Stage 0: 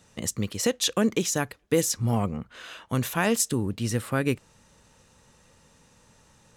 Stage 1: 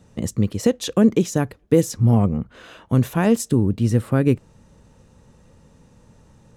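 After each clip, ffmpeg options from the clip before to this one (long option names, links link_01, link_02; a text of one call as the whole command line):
ffmpeg -i in.wav -af "tiltshelf=frequency=770:gain=7.5,volume=3dB" out.wav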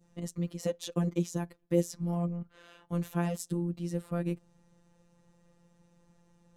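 ffmpeg -i in.wav -af "adynamicequalizer=threshold=0.01:dfrequency=1800:dqfactor=0.84:tfrequency=1800:tqfactor=0.84:attack=5:release=100:ratio=0.375:range=2:mode=cutabove:tftype=bell,afftfilt=real='hypot(re,im)*cos(PI*b)':imag='0':win_size=1024:overlap=0.75,volume=-9dB" out.wav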